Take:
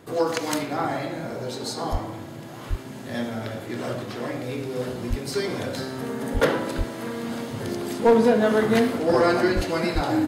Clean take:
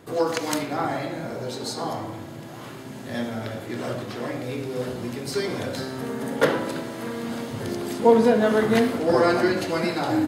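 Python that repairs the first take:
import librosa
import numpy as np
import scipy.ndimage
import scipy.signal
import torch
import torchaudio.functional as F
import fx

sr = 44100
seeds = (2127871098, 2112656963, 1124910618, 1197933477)

y = fx.fix_declip(x, sr, threshold_db=-10.5)
y = fx.fix_deplosive(y, sr, at_s=(1.91, 2.69, 5.09, 6.33, 6.77, 9.55, 9.94))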